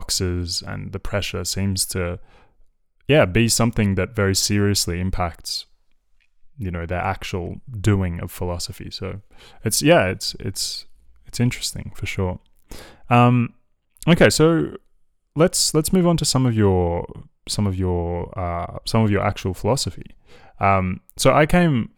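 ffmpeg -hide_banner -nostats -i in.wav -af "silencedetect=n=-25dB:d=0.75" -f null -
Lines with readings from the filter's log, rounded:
silence_start: 2.14
silence_end: 3.09 | silence_duration: 0.95
silence_start: 5.60
silence_end: 6.60 | silence_duration: 1.00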